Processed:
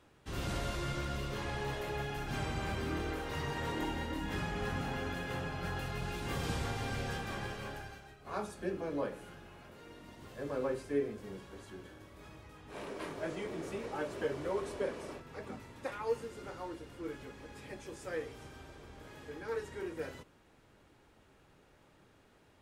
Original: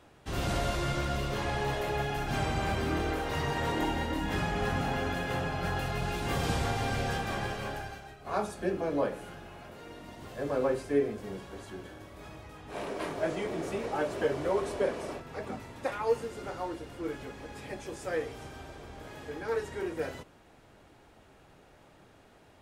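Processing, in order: peaking EQ 700 Hz -5.5 dB 0.42 oct; trim -5.5 dB

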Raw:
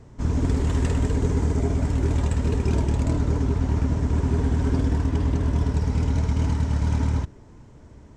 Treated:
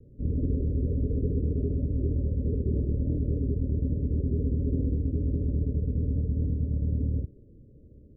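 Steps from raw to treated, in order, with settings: steep low-pass 570 Hz 96 dB/octave; trim -5 dB

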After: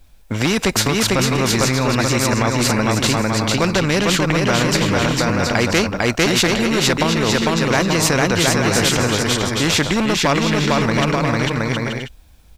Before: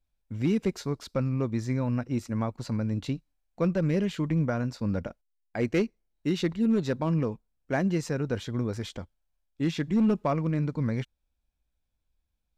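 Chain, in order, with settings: bouncing-ball echo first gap 450 ms, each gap 0.6×, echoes 5; loudness maximiser +20.5 dB; spectrum-flattening compressor 2:1; trim -1 dB

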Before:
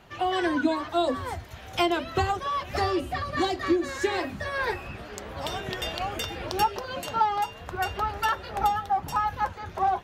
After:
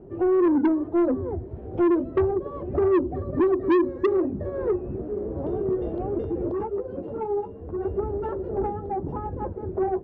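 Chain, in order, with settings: resonant low-pass 380 Hz, resonance Q 3.9; in parallel at -1.5 dB: compression, threshold -34 dBFS, peak gain reduction 23.5 dB; on the sum: saturation -17.5 dBFS, distortion -8 dB; 6.52–7.85 s: three-phase chorus; trim +1.5 dB

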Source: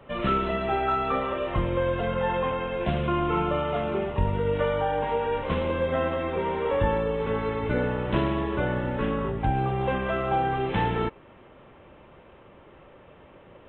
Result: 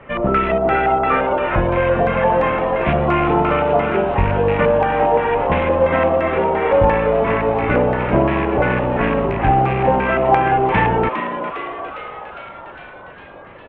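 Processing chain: rattle on loud lows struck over -29 dBFS, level -29 dBFS; LFO low-pass square 2.9 Hz 750–2100 Hz; on a send: frequency-shifting echo 406 ms, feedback 63%, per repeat +120 Hz, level -9.5 dB; on the sum: trim +7 dB

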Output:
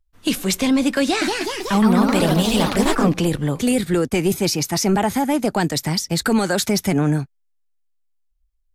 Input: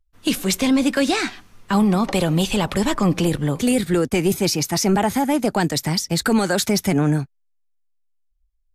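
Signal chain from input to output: 1.02–3.18 s: ever faster or slower copies 194 ms, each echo +2 st, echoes 3

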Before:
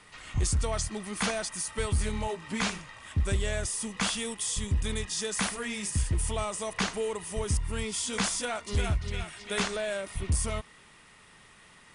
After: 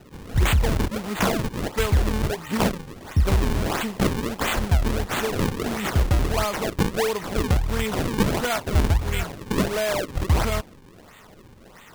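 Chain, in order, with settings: 8.50–9.32 s: treble shelf 5.4 kHz +9.5 dB; decimation with a swept rate 38×, swing 160% 1.5 Hz; trim +8 dB

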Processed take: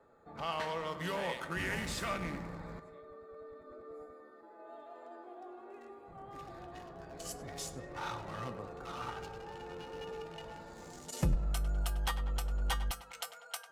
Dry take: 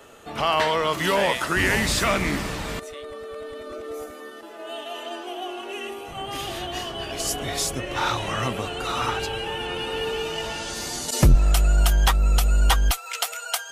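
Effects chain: local Wiener filter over 15 samples; feedback comb 170 Hz, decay 0.18 s, harmonics odd, mix 70%; tape echo 99 ms, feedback 65%, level -11.5 dB, low-pass 3.2 kHz; trim -6.5 dB

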